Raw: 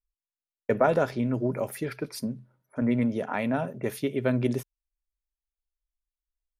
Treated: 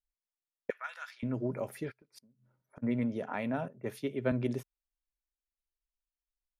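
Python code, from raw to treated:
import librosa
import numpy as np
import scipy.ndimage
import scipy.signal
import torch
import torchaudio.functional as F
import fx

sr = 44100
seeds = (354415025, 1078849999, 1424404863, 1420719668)

y = fx.highpass(x, sr, hz=1400.0, slope=24, at=(0.7, 1.23))
y = fx.gate_flip(y, sr, shuts_db=-27.0, range_db=-29, at=(1.9, 2.82), fade=0.02)
y = fx.high_shelf(y, sr, hz=8400.0, db=-7.5)
y = fx.band_widen(y, sr, depth_pct=70, at=(3.68, 4.32))
y = F.gain(torch.from_numpy(y), -6.5).numpy()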